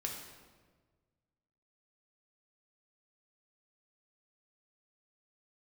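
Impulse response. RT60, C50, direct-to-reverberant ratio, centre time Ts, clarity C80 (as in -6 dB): 1.5 s, 3.5 dB, -0.5 dB, 48 ms, 6.0 dB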